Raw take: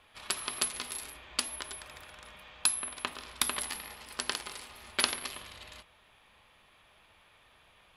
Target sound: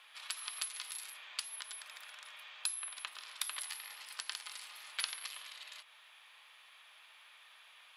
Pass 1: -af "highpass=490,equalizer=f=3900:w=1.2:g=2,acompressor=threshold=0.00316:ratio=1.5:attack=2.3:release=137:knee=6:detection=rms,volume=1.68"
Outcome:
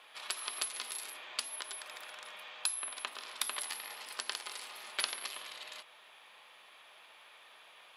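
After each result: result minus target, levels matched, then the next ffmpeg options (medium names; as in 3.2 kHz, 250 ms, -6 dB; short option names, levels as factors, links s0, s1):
500 Hz band +11.0 dB; compression: peak gain reduction -2.5 dB
-af "highpass=1200,equalizer=f=3900:w=1.2:g=2,acompressor=threshold=0.00316:ratio=1.5:attack=2.3:release=137:knee=6:detection=rms,volume=1.68"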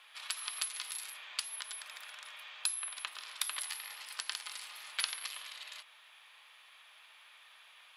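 compression: peak gain reduction -3 dB
-af "highpass=1200,equalizer=f=3900:w=1.2:g=2,acompressor=threshold=0.00119:ratio=1.5:attack=2.3:release=137:knee=6:detection=rms,volume=1.68"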